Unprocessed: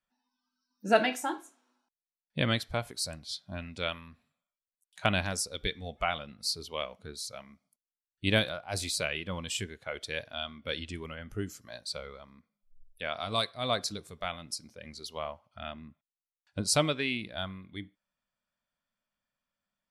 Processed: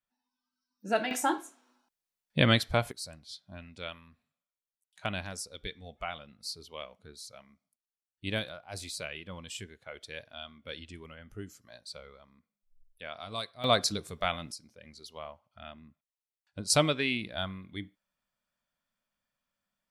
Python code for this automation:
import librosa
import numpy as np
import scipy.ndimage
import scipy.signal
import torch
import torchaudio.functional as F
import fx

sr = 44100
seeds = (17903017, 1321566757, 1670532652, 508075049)

y = fx.gain(x, sr, db=fx.steps((0.0, -5.0), (1.11, 5.0), (2.92, -7.0), (13.64, 5.0), (14.52, -6.0), (16.7, 1.5)))